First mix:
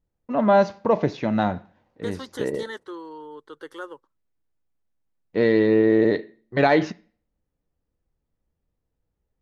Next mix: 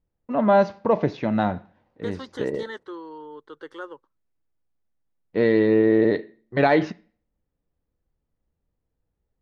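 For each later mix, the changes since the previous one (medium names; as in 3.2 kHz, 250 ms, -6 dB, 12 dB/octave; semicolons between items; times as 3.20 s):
master: add distance through air 93 m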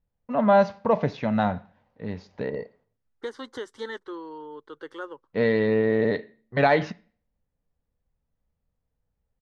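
first voice: add peaking EQ 340 Hz -12.5 dB 0.38 oct; second voice: entry +1.20 s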